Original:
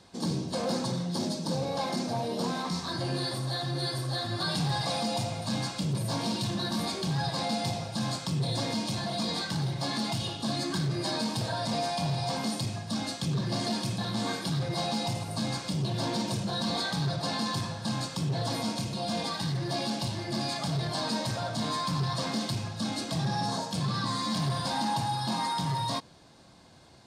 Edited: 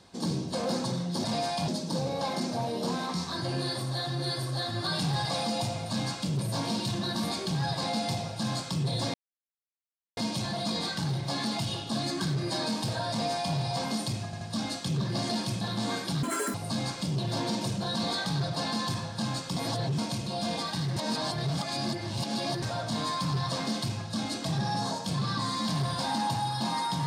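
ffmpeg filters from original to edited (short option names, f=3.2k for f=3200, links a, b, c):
-filter_complex "[0:a]asplit=12[a][b][c][d][e][f][g][h][i][j][k][l];[a]atrim=end=1.242[m];[b]atrim=start=11.638:end=12.082[n];[c]atrim=start=1.238:end=8.7,asetpts=PTS-STARTPTS,afade=t=out:st=7.458:d=0.004:c=hsin,apad=pad_dur=1.03[o];[d]atrim=start=8.7:end=12.862,asetpts=PTS-STARTPTS,afade=t=in:d=0.004:c=hsin[p];[e]atrim=start=12.778:end=12.862[q];[f]atrim=start=12.778:end=14.604[r];[g]atrim=start=14.6:end=15.21,asetpts=PTS-STARTPTS,asetrate=85554,aresample=44100,atrim=end_sample=13866,asetpts=PTS-STARTPTS[s];[h]atrim=start=15.206:end=18.232[t];[i]atrim=start=18.228:end=18.652,asetpts=PTS-STARTPTS,areverse[u];[j]atrim=start=18.648:end=19.632[v];[k]atrim=start=19.628:end=21.292,asetpts=PTS-STARTPTS,areverse[w];[l]atrim=start=21.288[x];[m][n]acrossfade=d=0.004:c1=hsin:c2=hsin[y];[o][p]concat=n=2:v=0:a=1[z];[y][z]acrossfade=d=0.004:c1=hsin:c2=hsin[aa];[aa][q]acrossfade=d=0.004:c1=hsin:c2=hsin[ab];[ab][r]acrossfade=d=0.004:c1=hsin:c2=hsin[ac];[ac][s]acrossfade=d=0.004:c1=hsin:c2=hsin[ad];[ad][t]acrossfade=d=0.004:c1=hsin:c2=hsin[ae];[ae][u]acrossfade=d=0.004:c1=hsin:c2=hsin[af];[af][v]acrossfade=d=0.004:c1=hsin:c2=hsin[ag];[ag][w]acrossfade=d=0.004:c1=hsin:c2=hsin[ah];[ah][x]acrossfade=d=0.004:c1=hsin:c2=hsin"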